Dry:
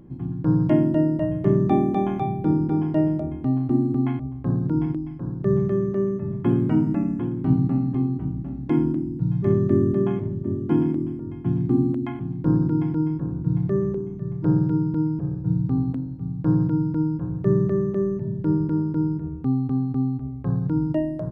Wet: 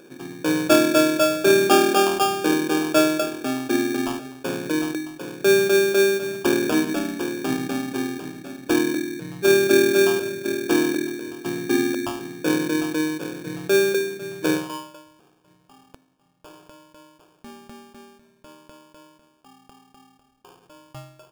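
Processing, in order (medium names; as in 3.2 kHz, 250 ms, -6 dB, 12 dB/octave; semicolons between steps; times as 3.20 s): high-pass sweep 470 Hz -> 2.1 kHz, 14.53–15.04 s; sample-rate reducer 2 kHz, jitter 0%; trim +4 dB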